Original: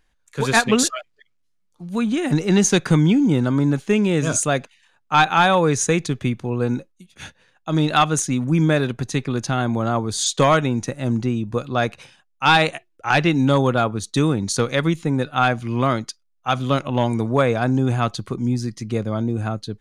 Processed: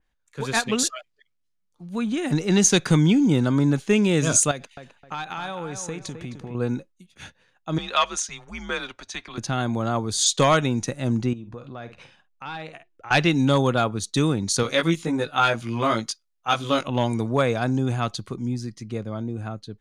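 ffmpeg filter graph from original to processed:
-filter_complex "[0:a]asettb=1/sr,asplit=3[s0][s1][s2];[s0]atrim=end=4.514[s3];[s1]atrim=start=4.51:end=6.55,asetpts=PTS-STARTPTS,afade=t=in:d=0.004:c=qsin,afade=t=out:st=2.036:d=0.004:c=qsin,acompressor=threshold=0.0501:ratio=16:attack=3.2:release=140:knee=1:detection=peak,asplit=2[s4][s5];[s5]adelay=261,lowpass=f=2600:p=1,volume=0.422,asplit=2[s6][s7];[s7]adelay=261,lowpass=f=2600:p=1,volume=0.33,asplit=2[s8][s9];[s9]adelay=261,lowpass=f=2600:p=1,volume=0.33,asplit=2[s10][s11];[s11]adelay=261,lowpass=f=2600:p=1,volume=0.33[s12];[s4][s6][s8][s10][s12]amix=inputs=5:normalize=0,atrim=end_sample=89964[s13];[s2]atrim=start=6.546[s14];[s3][s13]acrossfade=d=0.004:c1=hsin:c2=qsin[s15];[s15][s14]acrossfade=d=0.004:c1=qsin:c2=hsin,asettb=1/sr,asplit=3[s16][s17][s18];[s16]atrim=end=7.784[s19];[s17]atrim=start=7.78:end=9.38,asetpts=PTS-STARTPTS,afade=t=in:d=0.004:c=qsin,afade=t=out:st=1.596:d=0.004:c=qsin,acrossover=split=530 7000:gain=0.0708 1 0.178[s20][s21][s22];[s20][s21][s22]amix=inputs=3:normalize=0,aecho=1:1:5.9:0.34,atrim=end_sample=70560,afreqshift=-110[s23];[s18]atrim=start=9.376[s24];[s19][s23]acrossfade=d=0.004:c1=hsin:c2=qsin[s25];[s25][s24]acrossfade=d=0.004:c1=qsin:c2=hsin,asettb=1/sr,asplit=3[s26][s27][s28];[s26]atrim=end=11.334[s29];[s27]atrim=start=11.33:end=13.11,asetpts=PTS-STARTPTS,afade=t=in:d=0.004:c=qsin,afade=t=out:st=1.776:d=0.004:c=qsin,aemphasis=mode=reproduction:type=50fm,asplit=2[s30][s31];[s31]adelay=50,volume=0.2[s32];[s30][s32]amix=inputs=2:normalize=0,atrim=end_sample=78498,acompressor=threshold=0.0158:ratio=3:attack=3.2:release=140:knee=1:detection=peak[s33];[s28]atrim=start=13.106[s34];[s29][s33]acrossfade=d=0.004:c1=hsin:c2=qsin[s35];[s35][s34]acrossfade=d=0.004:c1=qsin:c2=hsin,asettb=1/sr,asplit=3[s36][s37][s38];[s36]atrim=end=14.634[s39];[s37]atrim=start=14.63:end=16.88,asetpts=PTS-STARTPTS,afade=t=in:d=0.004:c=qsin,afade=t=out:st=2.246:d=0.004:c=qsin,lowshelf=f=160:g=-9.5,asplit=2[s40][s41];[s41]adelay=18,volume=0.75[s42];[s40][s42]amix=inputs=2:normalize=0,atrim=end_sample=99225[s43];[s38]atrim=start=16.876[s44];[s39][s43]acrossfade=d=0.004:c1=hsin:c2=qsin[s45];[s45][s44]acrossfade=d=0.004:c1=qsin:c2=hsin,highshelf=f=7900:g=-5,dynaudnorm=f=260:g=17:m=3.76,adynamicequalizer=threshold=0.0316:dfrequency=3000:dqfactor=0.7:tfrequency=3000:tqfactor=0.7:attack=5:release=100:ratio=0.375:range=3.5:mode=boostabove:tftype=highshelf,volume=0.422"

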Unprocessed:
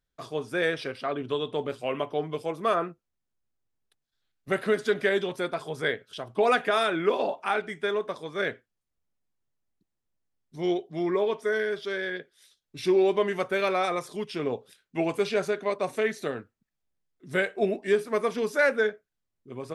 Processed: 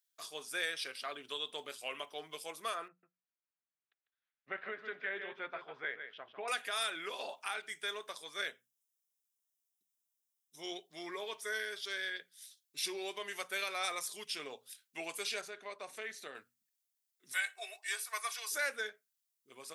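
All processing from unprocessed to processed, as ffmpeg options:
-filter_complex "[0:a]asettb=1/sr,asplit=3[s0][s1][s2];[s0]atrim=end=2.884[s3];[s1]atrim=start=2.88:end=6.48,asetpts=PTS-STARTPTS,afade=t=in:d=0.004:c=qsin,afade=t=out:st=3.596:d=0.004:c=qsin,lowpass=f=2300:w=0.5412,lowpass=f=2300:w=1.3066,aecho=1:1:148:0.335,atrim=end_sample=158760[s4];[s2]atrim=start=6.476[s5];[s3][s4]acrossfade=d=0.004:c1=hsin:c2=qsin[s6];[s6][s5]acrossfade=d=0.004:c1=qsin:c2=hsin,asettb=1/sr,asplit=3[s7][s8][s9];[s7]atrim=end=8.474[s10];[s8]atrim=start=8.47:end=10.74,asetpts=PTS-STARTPTS,afade=t=in:d=0.004:c=qsin,afade=t=out:st=2.266:d=0.004:c=qsin,asuperstop=centerf=4400:order=4:qfactor=4.9,equalizer=f=1900:t=o:w=0.78:g=-6[s11];[s9]atrim=start=10.736[s12];[s10][s11]acrossfade=d=0.004:c1=hsin:c2=qsin[s13];[s13][s12]acrossfade=d=0.004:c1=qsin:c2=hsin,asettb=1/sr,asplit=3[s14][s15][s16];[s14]atrim=end=15.414[s17];[s15]atrim=start=15.41:end=16.35,asetpts=PTS-STARTPTS,afade=t=in:d=0.004:c=qsin,afade=t=out:st=0.936:d=0.004:c=qsin,lowpass=f=2100:p=1,acompressor=threshold=0.0251:ratio=1.5:attack=3.2:release=140:knee=1:detection=peak[s18];[s16]atrim=start=16.346[s19];[s17][s18]acrossfade=d=0.004:c1=hsin:c2=qsin[s20];[s20][s19]acrossfade=d=0.004:c1=qsin:c2=hsin,asettb=1/sr,asplit=3[s21][s22][s23];[s21]atrim=end=17.324[s24];[s22]atrim=start=17.32:end=18.52,asetpts=PTS-STARTPTS,afade=t=in:d=0.004:c=qsin,afade=t=out:st=1.196:d=0.004:c=qsin,highpass=f=740:w=0.5412,highpass=f=740:w=1.3066,bandreject=f=3100:w=13,aecho=1:1:2.7:0.52,atrim=end_sample=52920[s25];[s23]atrim=start=18.516[s26];[s24][s25]acrossfade=d=0.004:c1=hsin:c2=qsin[s27];[s27][s26]acrossfade=d=0.004:c1=qsin:c2=hsin,alimiter=limit=0.133:level=0:latency=1:release=256,aderivative,bandreject=f=60:t=h:w=6,bandreject=f=120:t=h:w=6,bandreject=f=180:t=h:w=6,bandreject=f=240:t=h:w=6,volume=2.11"

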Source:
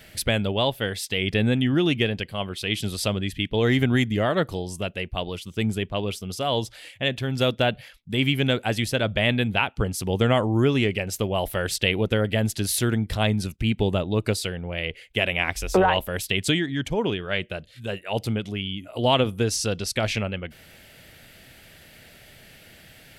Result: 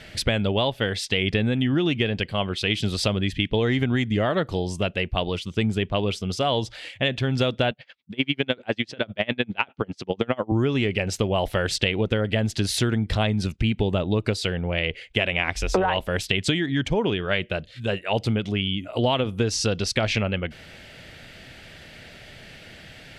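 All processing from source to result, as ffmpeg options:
-filter_complex "[0:a]asettb=1/sr,asplit=3[s0][s1][s2];[s0]atrim=end=7.714[s3];[s1]atrim=start=7.71:end=10.52,asetpts=PTS-STARTPTS,afade=t=in:d=0.004:c=qsin,afade=t=out:st=2.806:d=0.004:c=qsin,highpass=180,lowpass=4900,aeval=exprs='val(0)*pow(10,-31*(0.5-0.5*cos(2*PI*10*n/s))/20)':c=same[s4];[s2]atrim=start=10.516[s5];[s3][s4]acrossfade=d=0.004:c1=hsin:c2=qsin[s6];[s6][s5]acrossfade=d=0.004:c1=qsin:c2=hsin,lowpass=5800,acompressor=threshold=0.0631:ratio=6,volume=1.88"

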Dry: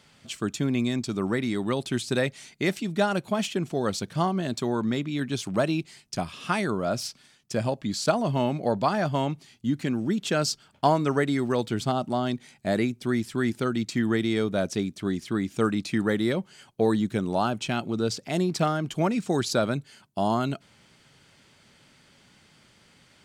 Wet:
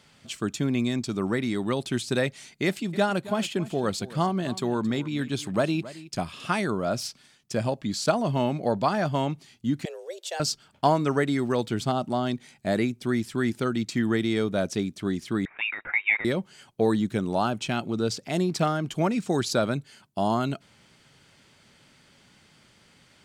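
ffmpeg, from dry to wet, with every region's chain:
-filter_complex "[0:a]asettb=1/sr,asplit=3[s0][s1][s2];[s0]atrim=end=2.664[s3];[s1]atrim=start=2.66:end=6.46,asetpts=PTS-STARTPTS,afade=t=in:d=0.004:c=qsin,afade=t=out:st=3.796:d=0.004:c=qsin,bandreject=f=5800:w=10,aecho=1:1:270:0.141,atrim=end_sample=167580[s4];[s2]atrim=start=6.456[s5];[s3][s4]acrossfade=d=0.004:c1=hsin:c2=qsin[s6];[s6][s5]acrossfade=d=0.004:c1=qsin:c2=hsin,asettb=1/sr,asplit=3[s7][s8][s9];[s7]atrim=end=9.854[s10];[s8]atrim=start=9.85:end=10.4,asetpts=PTS-STARTPTS,afade=t=in:d=0.004:c=qsin,afade=t=out:st=0.546:d=0.004:c=qsin,highpass=f=340:w=0.5412,highpass=f=340:w=1.3066,equalizer=f=1100:w=0.44:g=-11.5,afreqshift=170[s11];[s9]atrim=start=10.396[s12];[s10][s11]acrossfade=d=0.004:c1=hsin:c2=qsin[s13];[s13][s12]acrossfade=d=0.004:c1=qsin:c2=hsin,asettb=1/sr,asplit=3[s14][s15][s16];[s14]atrim=end=15.454[s17];[s15]atrim=start=15.45:end=16.25,asetpts=PTS-STARTPTS,afade=t=in:d=0.004:c=qsin,afade=t=out:st=0.796:d=0.004:c=qsin,highpass=f=1800:t=q:w=5,lowpass=f=3400:t=q:w=0.5098,lowpass=f=3400:t=q:w=0.6013,lowpass=f=3400:t=q:w=0.9,lowpass=f=3400:t=q:w=2.563,afreqshift=-4000[s18];[s16]atrim=start=16.246[s19];[s17][s18]acrossfade=d=0.004:c1=hsin:c2=qsin[s20];[s20][s19]acrossfade=d=0.004:c1=qsin:c2=hsin"

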